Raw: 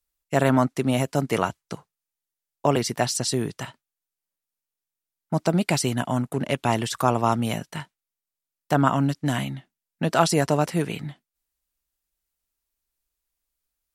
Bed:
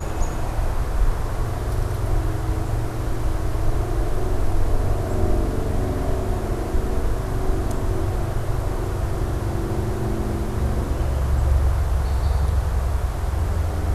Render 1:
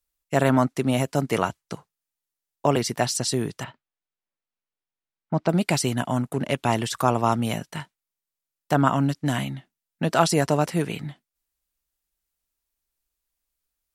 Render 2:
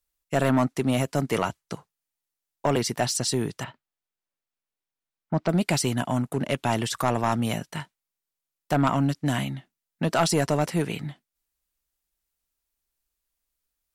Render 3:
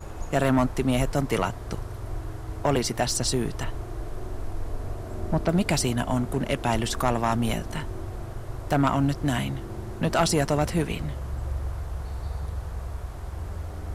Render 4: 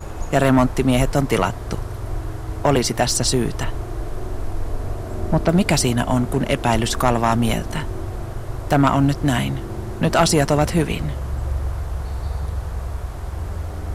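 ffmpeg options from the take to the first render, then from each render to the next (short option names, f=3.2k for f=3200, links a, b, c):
-filter_complex "[0:a]asettb=1/sr,asplit=3[a][b][c];[a]atrim=end=3.644[d];[b]atrim=start=3.64:end=5.49,asetpts=PTS-STARTPTS,afade=t=in:d=0.004:c=qsin,afade=t=out:st=1.846:d=0.004:c=qsin,lowpass=3.2k[e];[c]atrim=start=5.486[f];[d][e]acrossfade=d=0.004:c1=hsin:c2=qsin[g];[g][f]acrossfade=d=0.004:c1=qsin:c2=hsin"
-af "asoftclip=type=tanh:threshold=-13dB"
-filter_complex "[1:a]volume=-11.5dB[a];[0:a][a]amix=inputs=2:normalize=0"
-af "volume=6.5dB"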